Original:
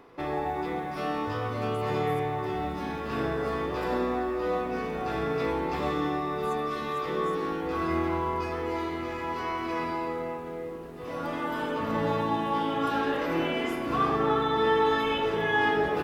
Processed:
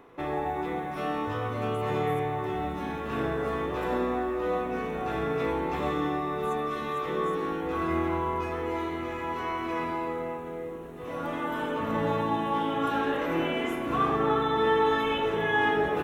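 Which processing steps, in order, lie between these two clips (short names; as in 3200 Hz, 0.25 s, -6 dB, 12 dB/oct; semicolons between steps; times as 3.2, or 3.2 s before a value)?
bell 4800 Hz -14.5 dB 0.26 oct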